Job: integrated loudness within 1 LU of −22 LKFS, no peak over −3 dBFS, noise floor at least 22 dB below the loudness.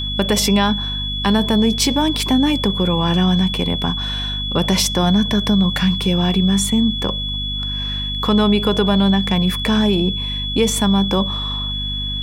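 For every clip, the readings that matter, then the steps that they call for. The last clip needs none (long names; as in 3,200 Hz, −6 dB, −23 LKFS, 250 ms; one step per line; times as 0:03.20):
mains hum 50 Hz; hum harmonics up to 250 Hz; level of the hum −24 dBFS; interfering tone 3,400 Hz; level of the tone −23 dBFS; integrated loudness −17.5 LKFS; sample peak −3.0 dBFS; target loudness −22.0 LKFS
→ hum removal 50 Hz, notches 5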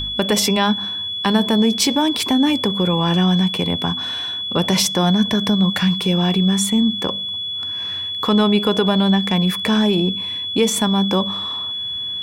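mains hum none found; interfering tone 3,400 Hz; level of the tone −23 dBFS
→ notch filter 3,400 Hz, Q 30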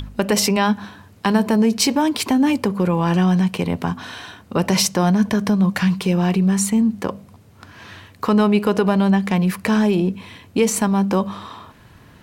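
interfering tone none found; integrated loudness −18.5 LKFS; sample peak −1.5 dBFS; target loudness −22.0 LKFS
→ level −3.5 dB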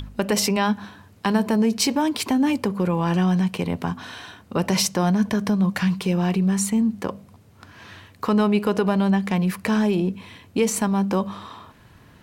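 integrated loudness −22.0 LKFS; sample peak −5.0 dBFS; background noise floor −51 dBFS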